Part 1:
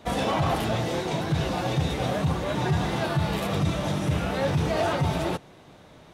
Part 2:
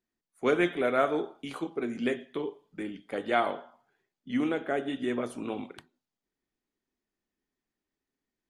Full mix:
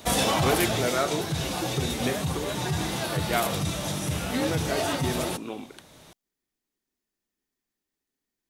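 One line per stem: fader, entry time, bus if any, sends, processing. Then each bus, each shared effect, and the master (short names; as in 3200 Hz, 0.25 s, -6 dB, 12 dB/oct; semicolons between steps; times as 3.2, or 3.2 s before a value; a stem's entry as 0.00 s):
+1.5 dB, 0.00 s, no send, high shelf 5100 Hz +8.5 dB; auto duck -6 dB, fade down 1.15 s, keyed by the second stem
-1.5 dB, 0.00 s, no send, dry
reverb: off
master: high shelf 4000 Hz +9.5 dB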